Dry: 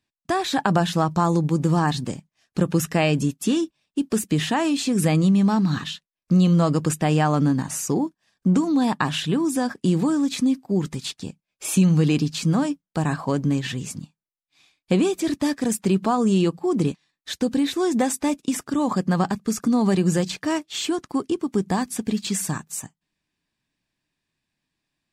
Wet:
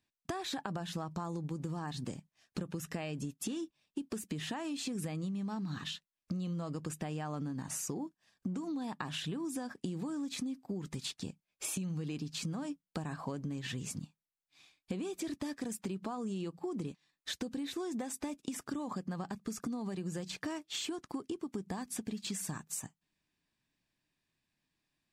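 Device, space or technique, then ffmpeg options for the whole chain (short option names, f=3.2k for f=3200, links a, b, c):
serial compression, leveller first: -af "acompressor=threshold=-22dB:ratio=2,acompressor=threshold=-32dB:ratio=6,volume=-4dB"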